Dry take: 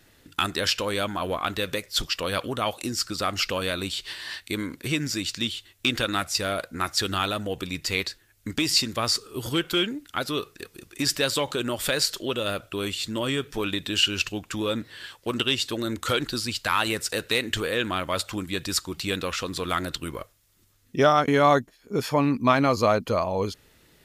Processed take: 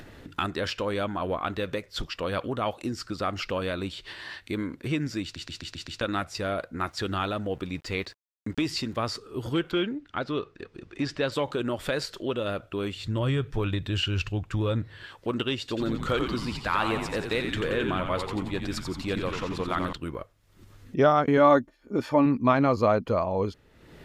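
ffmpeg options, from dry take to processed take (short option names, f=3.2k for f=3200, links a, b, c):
-filter_complex "[0:a]asettb=1/sr,asplit=3[a][b][c];[a]atrim=end=6.814[d];[b]atrim=start=6.81:end=9.04,asetpts=PTS-STARTPTS,afade=t=in:d=0.004:c=qsin,afade=t=out:st=2.226:d=0.004:c=qsin,aeval=exprs='val(0)*gte(abs(val(0)),0.00473)':c=same[e];[c]atrim=start=9.036[f];[d][e]acrossfade=d=0.004:c1=hsin:c2=qsin[g];[g][f]acrossfade=d=0.004:c1=qsin:c2=hsin,asettb=1/sr,asplit=3[h][i][j];[h]atrim=end=9.714[k];[i]atrim=start=9.71:end=11.32,asetpts=PTS-STARTPTS,afade=t=in:d=0.004:c=qsin,afade=t=out:st=1.606:d=0.004:c=qsin,lowpass=5.1k[l];[j]atrim=start=11.316[m];[k][l]acrossfade=d=0.004:c1=hsin:c2=qsin[n];[n][m]acrossfade=d=0.004:c1=qsin:c2=hsin,asettb=1/sr,asplit=3[o][p][q];[o]atrim=end=12.964[r];[p]atrim=start=12.96:end=15.03,asetpts=PTS-STARTPTS,afade=t=in:d=0.004:c=qsin,afade=t=out:st=2.066:d=0.004:c=qsin,lowshelf=f=160:t=q:w=1.5:g=9[s];[q]atrim=start=15.026[t];[r][s]acrossfade=d=0.004:c1=hsin:c2=qsin[u];[u][t]acrossfade=d=0.004:c1=qsin:c2=hsin,asettb=1/sr,asplit=3[v][w][x];[v]atrim=end=15.594[y];[w]atrim=start=15.59:end=19.93,asetpts=PTS-STARTPTS,afade=t=in:d=0.004:c=qsin,afade=t=out:st=4.336:d=0.004:c=qsin,asplit=9[z][aa][ab][ac][ad][ae][af][ag][ah];[aa]adelay=88,afreqshift=-86,volume=-6dB[ai];[ab]adelay=176,afreqshift=-172,volume=-10.3dB[aj];[ac]adelay=264,afreqshift=-258,volume=-14.6dB[ak];[ad]adelay=352,afreqshift=-344,volume=-18.9dB[al];[ae]adelay=440,afreqshift=-430,volume=-23.2dB[am];[af]adelay=528,afreqshift=-516,volume=-27.5dB[an];[ag]adelay=616,afreqshift=-602,volume=-31.8dB[ao];[ah]adelay=704,afreqshift=-688,volume=-36.1dB[ap];[z][ai][aj][ak][al][am][an][ao][ap]amix=inputs=9:normalize=0,atrim=end_sample=191394[aq];[x]atrim=start=19.926[ar];[y][aq]acrossfade=d=0.004:c1=hsin:c2=qsin[as];[as][ar]acrossfade=d=0.004:c1=qsin:c2=hsin,asettb=1/sr,asplit=3[at][au][av];[at]atrim=end=21.374[aw];[au]atrim=start=21.37:end=22.26,asetpts=PTS-STARTPTS,afade=t=in:d=0.004:c=qsin,afade=t=out:st=0.886:d=0.004:c=qsin,aecho=1:1:3.4:0.49,atrim=end_sample=39249[ax];[av]atrim=start=22.256[ay];[aw][ax]acrossfade=d=0.004:c1=hsin:c2=qsin[az];[az][ay]acrossfade=d=0.004:c1=qsin:c2=hsin,asplit=7[ba][bb][bc][bd][be][bf][bg];[ba]atrim=end=5.362[bh];[bb]atrim=start=5.228:end=5.362[bi];[bc]atrim=start=5.228:end=5.362[bj];[bd]atrim=start=5.228:end=5.362[bk];[be]atrim=start=5.228:end=5.362[bl];[bf]atrim=start=5.228:end=5.362[bm];[bg]atrim=start=6.008[bn];[bh][bi]acrossfade=d=0.004:c1=hsin:c2=hsin[bo];[bo][bj]acrossfade=d=0.004:c1=hsin:c2=hsin[bp];[bp][bk]acrossfade=d=0.004:c1=hsin:c2=hsin[bq];[bq][bl]acrossfade=d=0.004:c1=hsin:c2=hsin[br];[br][bm]acrossfade=d=0.004:c1=hsin:c2=hsin[bs];[bs][bn]acrossfade=d=0.004:c1=hsin:c2=hsin,lowpass=f=1.3k:p=1,acompressor=mode=upward:threshold=-35dB:ratio=2.5"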